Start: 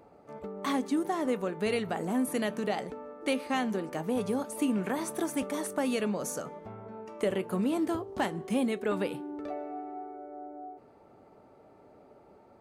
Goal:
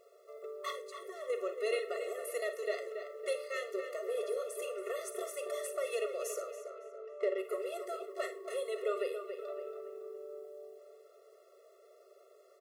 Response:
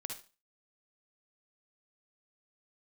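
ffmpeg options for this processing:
-filter_complex "[0:a]asettb=1/sr,asplit=3[link_01][link_02][link_03];[link_01]atrim=end=0.704[link_04];[link_02]atrim=start=0.7:end=1.3,asetpts=PTS-STARTPTS,afade=type=in:duration=0.004:curve=qsin,afade=type=out:start_time=0.596:duration=0.004:curve=qsin,acompressor=threshold=-33dB:ratio=6[link_05];[link_03]atrim=start=1.296[link_06];[link_04][link_05]acrossfade=duration=0.004:curve1=hsin:curve2=qsin[link_07];[link_07][link_06]acrossfade=duration=0.004:curve1=qsin:curve2=hsin,asettb=1/sr,asplit=3[link_08][link_09][link_10];[link_08]atrim=end=9.534[link_11];[link_09]atrim=start=9.53:end=10.45,asetpts=PTS-STARTPTS,afade=type=in:duration=0.004:curve=qsin,afade=type=out:start_time=0.916:duration=0.004:curve=qsin,aecho=1:1:2.3:0.55,atrim=end_sample=40572[link_12];[link_10]atrim=start=10.446[link_13];[link_11][link_12]acrossfade=duration=0.004:curve1=hsin:curve2=qsin[link_14];[link_14][link_13]acrossfade=duration=0.004:curve1=qsin:curve2=hsin,aeval=exprs='0.126*(cos(1*acos(clip(val(0)/0.126,-1,1)))-cos(1*PI/2))+0.00251*(cos(6*acos(clip(val(0)/0.126,-1,1)))-cos(6*PI/2))':channel_layout=same,acrusher=bits=10:mix=0:aa=0.000001,asettb=1/sr,asplit=3[link_15][link_16][link_17];[link_15]atrim=end=6.564[link_18];[link_16]atrim=start=6.56:end=7.38,asetpts=PTS-STARTPTS,afade=type=in:duration=0.004:curve=qsin,afade=type=out:start_time=0.816:duration=0.004:curve=qsin,adynamicsmooth=sensitivity=2.5:basefreq=2600[link_19];[link_17]atrim=start=7.376[link_20];[link_18][link_19]acrossfade=duration=0.004:curve1=hsin:curve2=qsin[link_21];[link_21][link_20]acrossfade=duration=0.004:curve1=qsin:curve2=hsin,asplit=2[link_22][link_23];[link_23]adelay=280,lowpass=frequency=3700:poles=1,volume=-8dB,asplit=2[link_24][link_25];[link_25]adelay=280,lowpass=frequency=3700:poles=1,volume=0.44,asplit=2[link_26][link_27];[link_27]adelay=280,lowpass=frequency=3700:poles=1,volume=0.44,asplit=2[link_28][link_29];[link_29]adelay=280,lowpass=frequency=3700:poles=1,volume=0.44,asplit=2[link_30][link_31];[link_31]adelay=280,lowpass=frequency=3700:poles=1,volume=0.44[link_32];[link_22][link_24][link_26][link_28][link_30][link_32]amix=inputs=6:normalize=0,asplit=2[link_33][link_34];[1:a]atrim=start_sample=2205,asetrate=57330,aresample=44100[link_35];[link_34][link_35]afir=irnorm=-1:irlink=0,volume=2dB[link_36];[link_33][link_36]amix=inputs=2:normalize=0,afftfilt=real='re*eq(mod(floor(b*sr/1024/360),2),1)':imag='im*eq(mod(floor(b*sr/1024/360),2),1)':win_size=1024:overlap=0.75,volume=-7dB"

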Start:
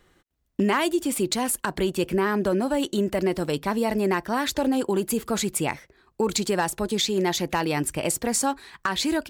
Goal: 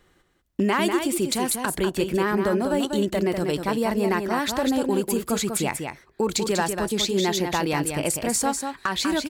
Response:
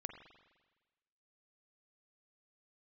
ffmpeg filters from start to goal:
-af "aecho=1:1:194:0.501"

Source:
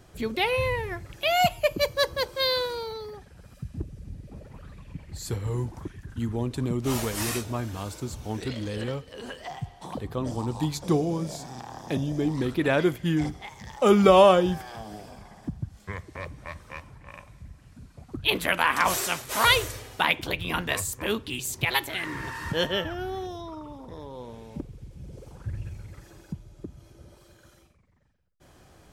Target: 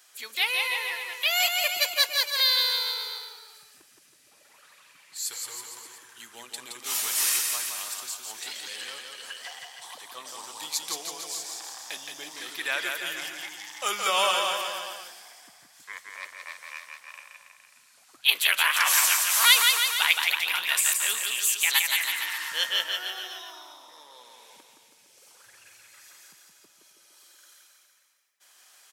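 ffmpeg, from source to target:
ffmpeg -i in.wav -af "highpass=1400,highshelf=frequency=3800:gain=9.5,aecho=1:1:170|323|460.7|584.6|696.2:0.631|0.398|0.251|0.158|0.1" out.wav

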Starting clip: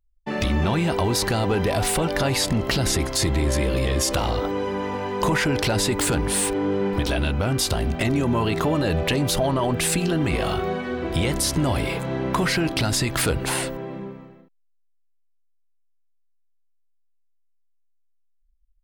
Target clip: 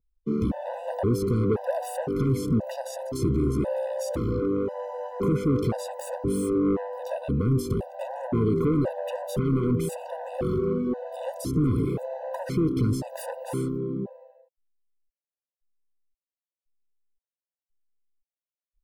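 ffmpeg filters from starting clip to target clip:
ffmpeg -i in.wav -af "equalizer=frequency=125:width_type=o:width=1:gain=11,equalizer=frequency=250:width_type=o:width=1:gain=10,equalizer=frequency=500:width_type=o:width=1:gain=11,equalizer=frequency=2000:width_type=o:width=1:gain=-10,equalizer=frequency=4000:width_type=o:width=1:gain=-7,equalizer=frequency=8000:width_type=o:width=1:gain=-5,asoftclip=type=tanh:threshold=-10dB,afftfilt=real='re*gt(sin(2*PI*0.96*pts/sr)*(1-2*mod(floor(b*sr/1024/500),2)),0)':imag='im*gt(sin(2*PI*0.96*pts/sr)*(1-2*mod(floor(b*sr/1024/500),2)),0)':win_size=1024:overlap=0.75,volume=-7.5dB" out.wav

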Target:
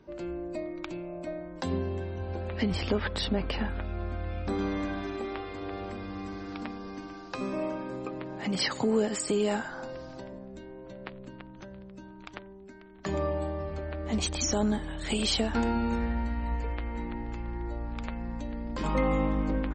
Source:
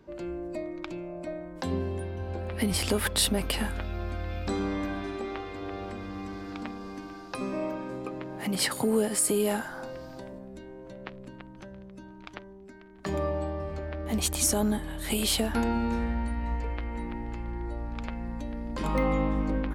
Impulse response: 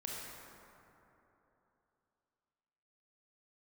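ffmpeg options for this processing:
-filter_complex "[0:a]asettb=1/sr,asplit=3[link_01][link_02][link_03];[link_01]atrim=end=2.654[link_04];[link_02]atrim=start=2.65:end=4.59,asetpts=PTS-STARTPTS,afade=type=in:duration=0.004:curve=qsin,afade=type=out:start_time=1.936:duration=0.004:curve=qsin,aemphasis=mode=reproduction:type=75kf[link_05];[link_03]atrim=start=4.586[link_06];[link_04][link_05]acrossfade=duration=0.004:curve1=hsin:curve2=qsin[link_07];[link_07][link_06]acrossfade=duration=0.004:curve1=qsin:curve2=hsin,asplit=2[link_08][link_09];[link_09]adelay=90,highpass=300,lowpass=3400,asoftclip=type=hard:threshold=-20dB,volume=-27dB[link_10];[link_08][link_10]amix=inputs=2:normalize=0" -ar 44100 -c:a libmp3lame -b:a 32k

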